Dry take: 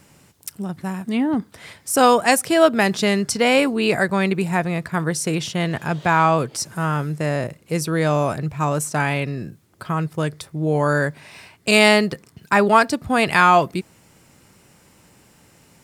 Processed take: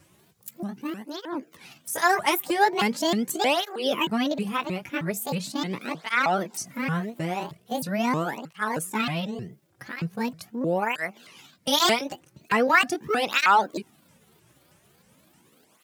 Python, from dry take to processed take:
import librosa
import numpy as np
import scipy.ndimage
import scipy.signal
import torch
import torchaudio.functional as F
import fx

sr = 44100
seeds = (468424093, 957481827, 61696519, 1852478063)

y = fx.pitch_ramps(x, sr, semitones=10.0, every_ms=313)
y = fx.flanger_cancel(y, sr, hz=0.41, depth_ms=4.7)
y = y * 10.0 ** (-3.0 / 20.0)